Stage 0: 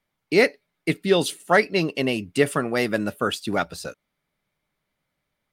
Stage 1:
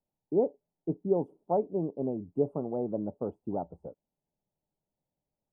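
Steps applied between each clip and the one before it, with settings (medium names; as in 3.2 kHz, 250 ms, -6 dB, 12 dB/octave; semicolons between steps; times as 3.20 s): elliptic low-pass 880 Hz, stop band 50 dB; trim -7.5 dB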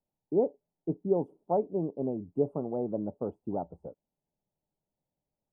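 no audible change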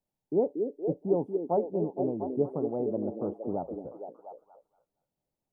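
repeats whose band climbs or falls 233 ms, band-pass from 320 Hz, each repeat 0.7 oct, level -3 dB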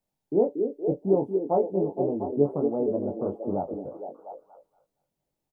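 doubling 21 ms -4 dB; trim +2.5 dB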